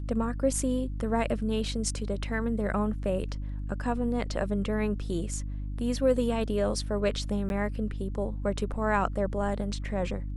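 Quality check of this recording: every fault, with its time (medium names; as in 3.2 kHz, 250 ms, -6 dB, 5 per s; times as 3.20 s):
hum 50 Hz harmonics 6 -34 dBFS
7.49–7.50 s: dropout 11 ms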